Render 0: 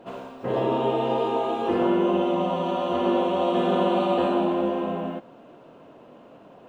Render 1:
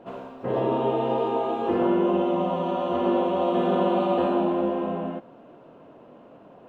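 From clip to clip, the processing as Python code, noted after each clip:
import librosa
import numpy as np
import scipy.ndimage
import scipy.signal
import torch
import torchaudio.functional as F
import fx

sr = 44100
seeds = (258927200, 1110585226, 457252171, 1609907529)

y = fx.high_shelf(x, sr, hz=3000.0, db=-9.5)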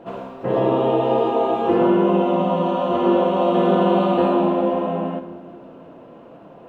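y = fx.room_shoebox(x, sr, seeds[0], volume_m3=2200.0, walls='mixed', distance_m=0.74)
y = y * 10.0 ** (5.0 / 20.0)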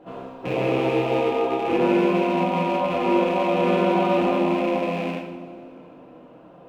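y = fx.rattle_buzz(x, sr, strikes_db=-29.0, level_db=-18.0)
y = fx.rev_double_slope(y, sr, seeds[1], early_s=0.6, late_s=2.6, knee_db=-17, drr_db=-1.5)
y = y * 10.0 ** (-7.5 / 20.0)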